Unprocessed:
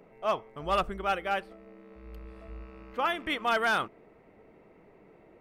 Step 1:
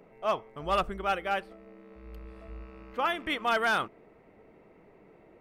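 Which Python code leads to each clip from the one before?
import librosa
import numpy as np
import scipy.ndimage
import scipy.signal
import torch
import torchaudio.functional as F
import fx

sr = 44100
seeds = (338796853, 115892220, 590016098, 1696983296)

y = x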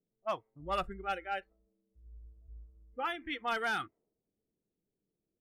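y = fx.noise_reduce_blind(x, sr, reduce_db=20)
y = fx.env_lowpass(y, sr, base_hz=300.0, full_db=-23.5)
y = F.gain(torch.from_numpy(y), -6.0).numpy()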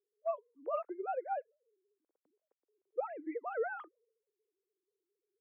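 y = fx.sine_speech(x, sr)
y = fx.bandpass_q(y, sr, hz=470.0, q=3.0)
y = F.gain(torch.from_numpy(y), 8.0).numpy()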